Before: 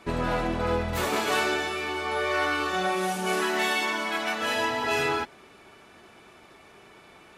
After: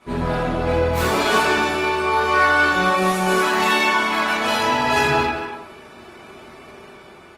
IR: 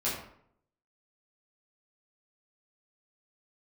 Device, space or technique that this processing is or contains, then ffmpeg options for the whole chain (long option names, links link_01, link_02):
speakerphone in a meeting room: -filter_complex "[1:a]atrim=start_sample=2205[link_01];[0:a][link_01]afir=irnorm=-1:irlink=0,asplit=2[link_02][link_03];[link_03]adelay=240,highpass=300,lowpass=3400,asoftclip=type=hard:threshold=-15.5dB,volume=-8dB[link_04];[link_02][link_04]amix=inputs=2:normalize=0,dynaudnorm=framelen=210:gausssize=9:maxgain=5dB,volume=-2dB" -ar 48000 -c:a libopus -b:a 24k